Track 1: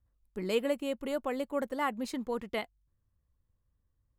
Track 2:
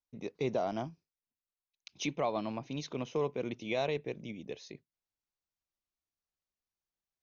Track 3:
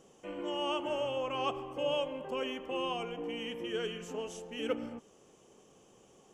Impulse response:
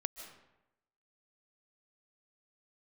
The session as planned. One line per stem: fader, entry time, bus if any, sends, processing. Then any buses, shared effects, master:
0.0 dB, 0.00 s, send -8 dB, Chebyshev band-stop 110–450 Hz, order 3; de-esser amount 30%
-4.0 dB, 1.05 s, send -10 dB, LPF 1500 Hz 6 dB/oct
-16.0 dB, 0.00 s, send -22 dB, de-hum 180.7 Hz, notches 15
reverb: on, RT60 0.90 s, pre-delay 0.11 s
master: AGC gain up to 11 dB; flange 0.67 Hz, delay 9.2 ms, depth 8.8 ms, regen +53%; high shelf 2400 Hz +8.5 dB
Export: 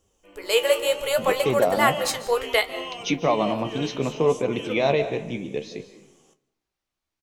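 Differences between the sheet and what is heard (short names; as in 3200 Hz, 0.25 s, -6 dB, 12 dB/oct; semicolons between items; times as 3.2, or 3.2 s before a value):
stem 2: send -10 dB -> -2.5 dB; stem 3 -16.0 dB -> -9.5 dB; reverb return +8.5 dB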